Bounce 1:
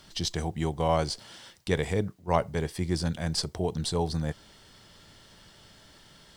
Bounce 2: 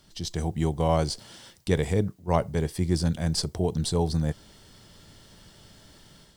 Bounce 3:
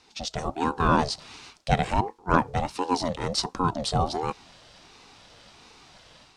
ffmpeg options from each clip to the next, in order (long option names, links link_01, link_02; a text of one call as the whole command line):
ffmpeg -i in.wav -af "equalizer=frequency=1800:width=0.31:gain=-6.5,dynaudnorm=framelen=230:gausssize=3:maxgain=7dB,volume=-2dB" out.wav
ffmpeg -i in.wav -af "highpass=250,lowpass=5700,aeval=exprs='val(0)*sin(2*PI*470*n/s+470*0.4/1.4*sin(2*PI*1.4*n/s))':channel_layout=same,volume=7dB" out.wav